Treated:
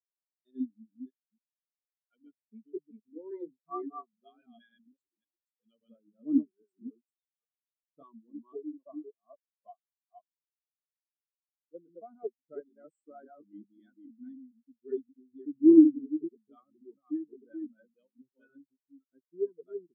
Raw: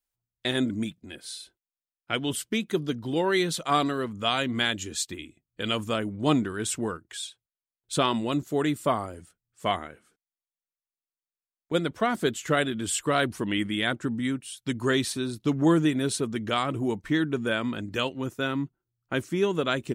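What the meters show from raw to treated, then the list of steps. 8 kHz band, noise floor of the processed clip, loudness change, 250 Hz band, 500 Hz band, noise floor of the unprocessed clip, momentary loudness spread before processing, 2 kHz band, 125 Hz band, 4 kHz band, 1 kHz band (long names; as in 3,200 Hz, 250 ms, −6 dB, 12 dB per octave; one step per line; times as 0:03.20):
below −40 dB, below −85 dBFS, −1.0 dB, −2.0 dB, −8.5 dB, below −85 dBFS, 9 LU, below −40 dB, below −30 dB, below −40 dB, −21.0 dB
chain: delay that plays each chunk backwards 276 ms, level −1 dB
high-pass filter 150 Hz 12 dB per octave
every bin expanded away from the loudest bin 4 to 1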